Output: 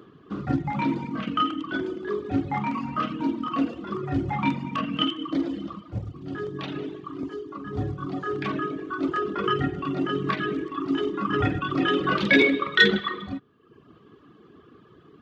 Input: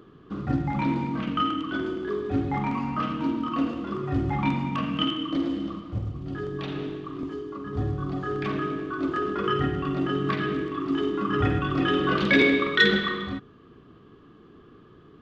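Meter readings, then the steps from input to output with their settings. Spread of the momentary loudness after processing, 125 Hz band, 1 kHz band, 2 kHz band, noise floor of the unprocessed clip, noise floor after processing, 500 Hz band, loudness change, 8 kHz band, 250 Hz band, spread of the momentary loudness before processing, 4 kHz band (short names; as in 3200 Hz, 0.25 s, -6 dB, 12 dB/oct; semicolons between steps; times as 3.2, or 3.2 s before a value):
15 LU, -2.5 dB, +1.0 dB, +1.5 dB, -52 dBFS, -54 dBFS, -0.5 dB, 0.0 dB, n/a, -0.5 dB, 13 LU, +1.0 dB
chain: HPF 59 Hz; reverb removal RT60 0.91 s; low shelf 91 Hz -6.5 dB; gain +2.5 dB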